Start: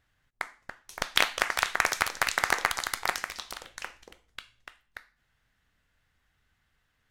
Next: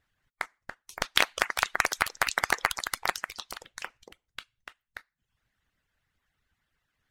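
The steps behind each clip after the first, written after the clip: harmonic-percussive split harmonic -12 dB; reverb removal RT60 0.55 s; gain +1 dB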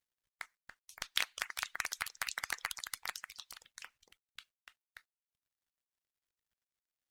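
passive tone stack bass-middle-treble 5-5-5; companded quantiser 8-bit; gain -1.5 dB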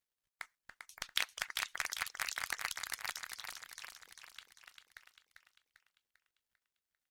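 feedback echo 0.396 s, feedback 49%, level -6 dB; gain -1 dB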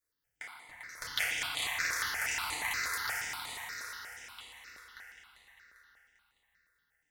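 FDN reverb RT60 3.2 s, high-frequency decay 0.5×, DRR -9.5 dB; step phaser 8.4 Hz 810–5500 Hz

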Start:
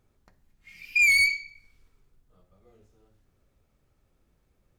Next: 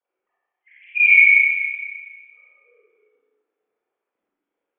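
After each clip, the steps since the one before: sine-wave speech; Schroeder reverb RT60 1.7 s, combs from 31 ms, DRR -8.5 dB; gain -1 dB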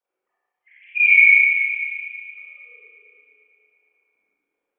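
echo with dull and thin repeats by turns 0.113 s, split 2300 Hz, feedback 79%, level -8 dB; gain -1 dB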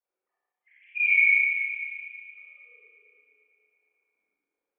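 bell 2900 Hz -2 dB; gain -7 dB

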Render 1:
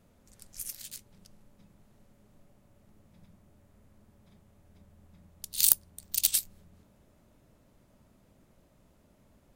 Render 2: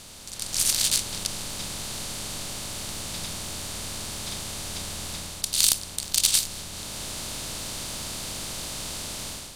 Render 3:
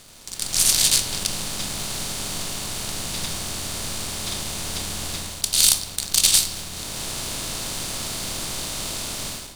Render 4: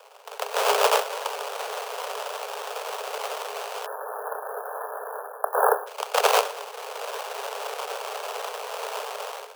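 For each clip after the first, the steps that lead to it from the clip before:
per-bin compression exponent 0.4; LPF 7900 Hz 12 dB/oct; AGC gain up to 11.5 dB
sample leveller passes 2; on a send at -9 dB: reverb RT60 1.1 s, pre-delay 3 ms; on the sum: gain -2 dB
sample-rate reducer 2000 Hz, jitter 20%; Chebyshev high-pass 410 Hz, order 10; spectral delete 3.86–5.87, 1800–10000 Hz

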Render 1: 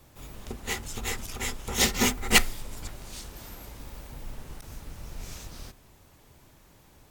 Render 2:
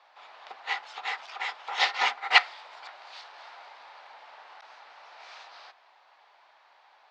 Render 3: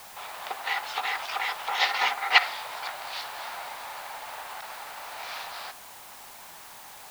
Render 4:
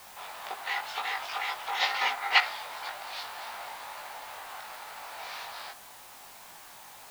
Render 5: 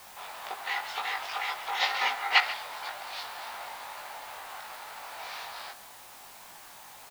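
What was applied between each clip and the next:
elliptic band-pass 750–4500 Hz, stop band 70 dB; high shelf 2200 Hz -10.5 dB; gain +8 dB
in parallel at 0 dB: negative-ratio compressor -37 dBFS, ratio -0.5; on the sum: requantised 8-bit, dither triangular
chorus 2 Hz, delay 18.5 ms, depth 2.7 ms
echo 0.138 s -15 dB

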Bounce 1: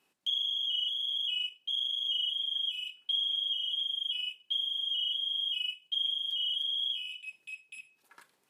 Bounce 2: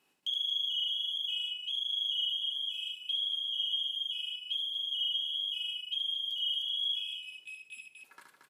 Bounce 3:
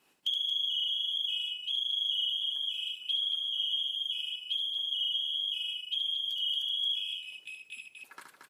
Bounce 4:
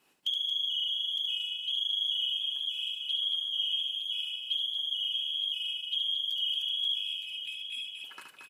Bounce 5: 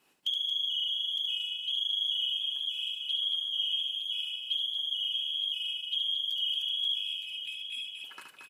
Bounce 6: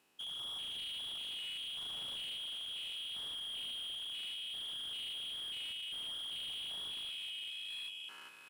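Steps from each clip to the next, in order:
on a send: loudspeakers at several distances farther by 25 m -4 dB, 78 m -6 dB; on the sum: dynamic EQ 2000 Hz, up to -8 dB, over -48 dBFS, Q 1.4
harmonic-percussive split percussive +8 dB
echo 0.913 s -8 dB
nothing audible
stepped spectrum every 0.2 s; slew limiter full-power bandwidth 34 Hz; gain -2 dB

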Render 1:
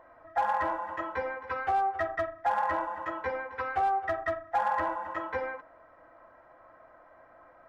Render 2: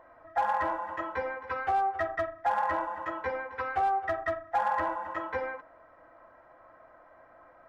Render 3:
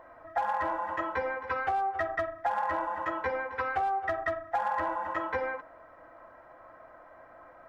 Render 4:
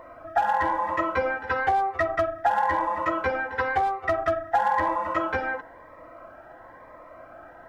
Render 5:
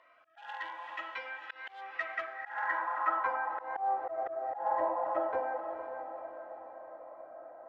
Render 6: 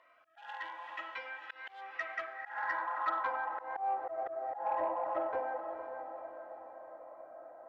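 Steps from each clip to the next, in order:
nothing audible
compressor, threshold -30 dBFS, peak gain reduction 7 dB; gain +3.5 dB
cascading phaser rising 0.99 Hz; gain +9 dB
diffused feedback echo 0.487 s, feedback 50%, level -8 dB; auto swell 0.176 s; band-pass sweep 3000 Hz -> 610 Hz, 1.79–4.18; gain -1.5 dB
soft clip -20 dBFS, distortion -25 dB; gain -2 dB

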